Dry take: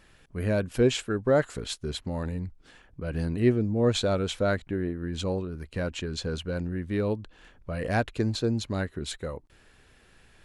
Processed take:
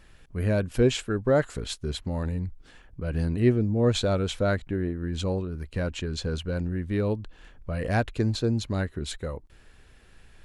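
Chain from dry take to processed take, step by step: bass shelf 81 Hz +9 dB

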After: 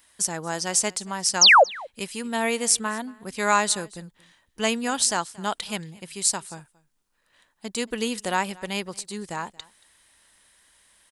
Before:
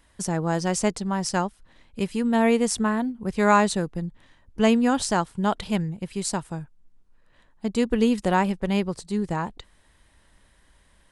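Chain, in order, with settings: tilt EQ +3.5 dB/octave; painted sound fall, 1.41–1.64 s, 470–7100 Hz -10 dBFS; on a send: delay 229 ms -23.5 dB; on the sum: trim -2 dB

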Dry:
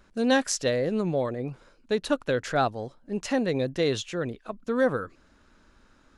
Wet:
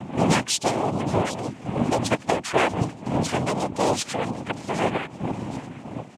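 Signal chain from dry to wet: wind noise 260 Hz -32 dBFS; in parallel at +1.5 dB: compression, threshold -35 dBFS, peak gain reduction 18.5 dB; on the sum: harmonic-percussive split percussive +6 dB; on a send: feedback echo behind a high-pass 769 ms, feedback 43%, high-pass 1.9 kHz, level -13.5 dB; on the sum: noise-vocoded speech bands 4; speakerphone echo 180 ms, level -28 dB; trim -3 dB

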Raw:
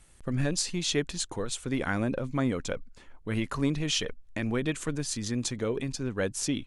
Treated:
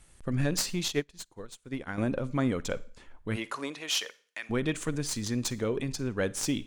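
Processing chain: tracing distortion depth 0.028 ms; 3.35–4.49 s: high-pass 360 Hz -> 1.3 kHz 12 dB/octave; Schroeder reverb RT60 0.43 s, DRR 18.5 dB; 0.88–1.98 s: upward expansion 2.5:1, over -41 dBFS

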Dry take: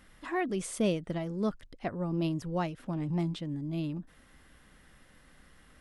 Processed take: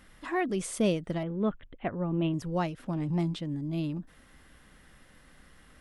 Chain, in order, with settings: 1.23–2.34 s: steep low-pass 3.5 kHz 72 dB/octave; trim +2 dB

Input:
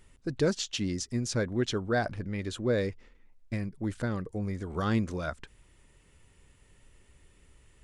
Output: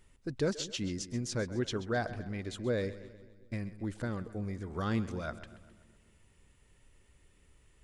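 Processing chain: two-band feedback delay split 390 Hz, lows 187 ms, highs 131 ms, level -15 dB; trim -4.5 dB

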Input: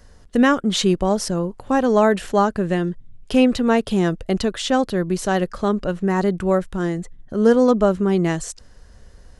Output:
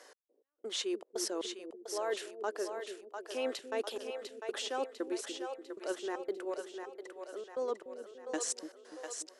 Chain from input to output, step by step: steep high-pass 320 Hz 48 dB/octave; reverse; compression 16:1, threshold -32 dBFS, peak gain reduction 21.5 dB; reverse; wow and flutter 55 cents; trance gate "x....xxx.x" 117 bpm -60 dB; two-band feedback delay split 440 Hz, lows 291 ms, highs 699 ms, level -6 dB

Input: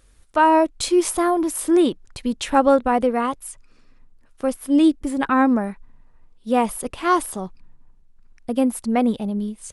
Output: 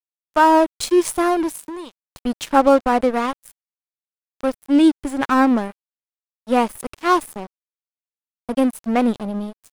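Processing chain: 1.55–2.24 s: compression 4:1, threshold -29 dBFS, peak gain reduction 13.5 dB; crossover distortion -30.5 dBFS; trim +3 dB

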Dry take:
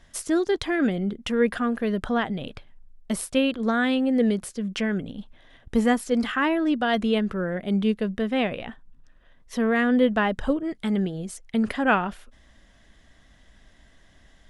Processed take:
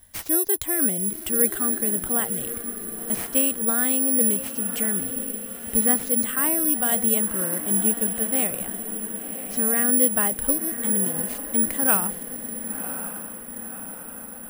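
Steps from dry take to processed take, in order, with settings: on a send: echo that smears into a reverb 1058 ms, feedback 59%, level -10 dB; on the sum: careless resampling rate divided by 4×, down none, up zero stuff; peaking EQ 75 Hz +6 dB; trim -5.5 dB

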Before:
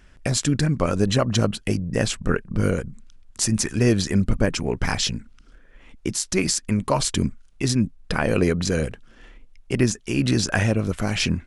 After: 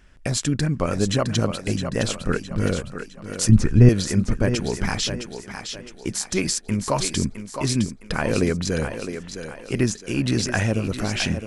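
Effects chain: 3.49–3.89 s: RIAA curve playback; on a send: thinning echo 662 ms, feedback 43%, high-pass 250 Hz, level -7.5 dB; on the sum: trim -1.5 dB

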